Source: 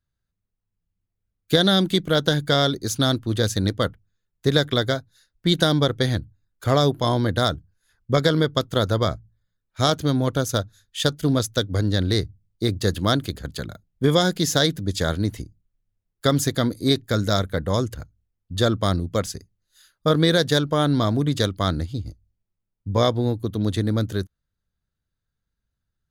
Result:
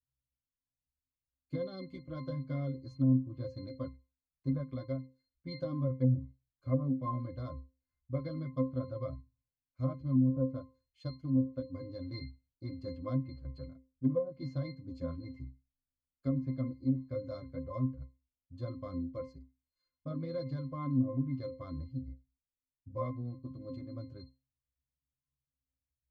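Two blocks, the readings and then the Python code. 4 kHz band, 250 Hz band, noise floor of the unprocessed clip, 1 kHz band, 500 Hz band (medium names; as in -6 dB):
-34.0 dB, -11.5 dB, -81 dBFS, -20.5 dB, -17.5 dB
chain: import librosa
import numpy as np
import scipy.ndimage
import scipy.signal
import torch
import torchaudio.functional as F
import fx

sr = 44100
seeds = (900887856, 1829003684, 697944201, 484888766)

y = fx.octave_resonator(x, sr, note='C', decay_s=0.27)
y = fx.chorus_voices(y, sr, voices=6, hz=0.3, base_ms=10, depth_ms=2.6, mix_pct=40)
y = fx.env_lowpass_down(y, sr, base_hz=410.0, full_db=-24.0)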